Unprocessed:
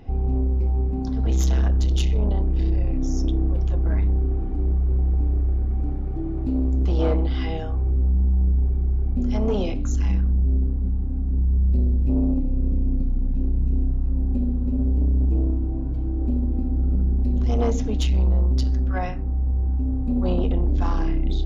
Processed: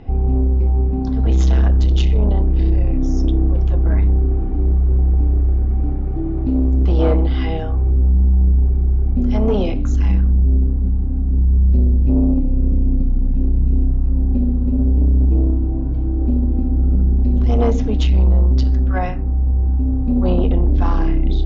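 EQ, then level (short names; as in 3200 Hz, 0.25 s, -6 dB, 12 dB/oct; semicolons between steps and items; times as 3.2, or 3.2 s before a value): air absorption 130 m; +6.0 dB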